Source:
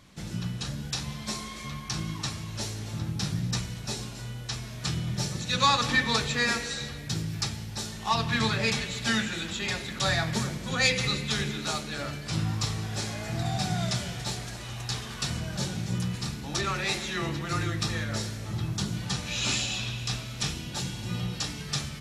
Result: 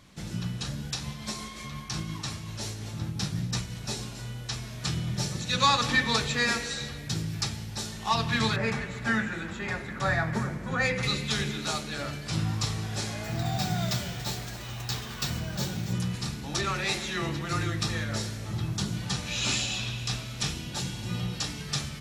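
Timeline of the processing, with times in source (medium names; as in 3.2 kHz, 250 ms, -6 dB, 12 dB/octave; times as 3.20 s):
0.90–3.81 s: tremolo 5.6 Hz, depth 29%
8.56–11.03 s: resonant high shelf 2.4 kHz -10.5 dB, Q 1.5
13.24–15.93 s: careless resampling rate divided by 2×, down filtered, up hold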